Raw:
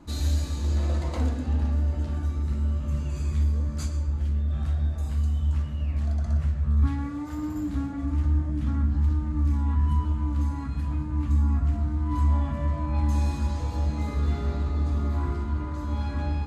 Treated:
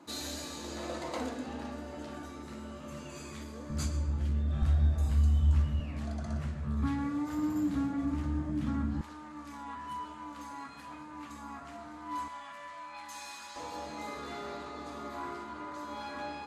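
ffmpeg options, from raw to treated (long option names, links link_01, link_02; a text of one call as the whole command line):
ffmpeg -i in.wav -af "asetnsamples=nb_out_samples=441:pad=0,asendcmd='3.7 highpass f 90;4.62 highpass f 42;5.8 highpass f 150;9.01 highpass f 600;12.28 highpass f 1300;13.56 highpass f 480',highpass=330" out.wav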